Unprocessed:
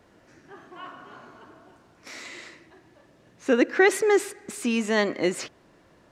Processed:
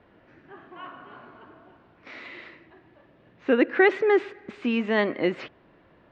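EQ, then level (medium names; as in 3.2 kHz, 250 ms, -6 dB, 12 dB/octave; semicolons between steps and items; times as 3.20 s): low-pass 3.3 kHz 24 dB/octave; 0.0 dB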